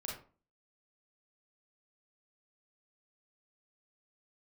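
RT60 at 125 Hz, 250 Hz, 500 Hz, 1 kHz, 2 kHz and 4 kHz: 0.45, 0.50, 0.40, 0.40, 0.30, 0.25 seconds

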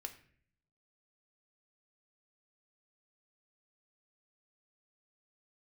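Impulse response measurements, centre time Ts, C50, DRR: 10 ms, 13.0 dB, 6.0 dB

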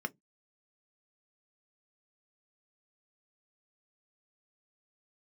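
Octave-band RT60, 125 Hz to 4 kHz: 0.30, 0.25, 0.20, 0.10, 0.10, 0.10 seconds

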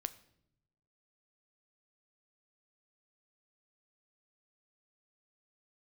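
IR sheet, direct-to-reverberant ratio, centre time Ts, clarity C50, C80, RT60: 12.0 dB, 4 ms, 17.0 dB, 19.5 dB, 0.75 s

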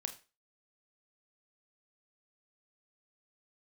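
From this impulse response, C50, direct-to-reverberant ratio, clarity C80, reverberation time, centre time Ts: 13.0 dB, 6.5 dB, 18.5 dB, 0.30 s, 9 ms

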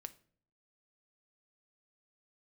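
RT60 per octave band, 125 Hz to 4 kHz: 0.80, 0.75, 0.60, 0.45, 0.40, 0.35 seconds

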